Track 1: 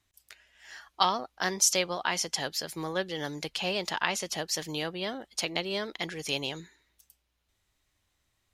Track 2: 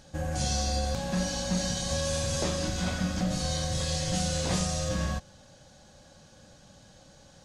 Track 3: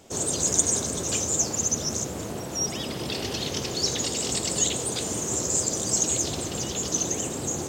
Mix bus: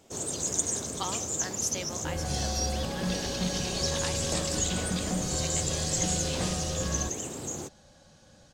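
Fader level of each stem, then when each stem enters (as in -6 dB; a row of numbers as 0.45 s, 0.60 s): -10.0 dB, -2.5 dB, -6.5 dB; 0.00 s, 1.90 s, 0.00 s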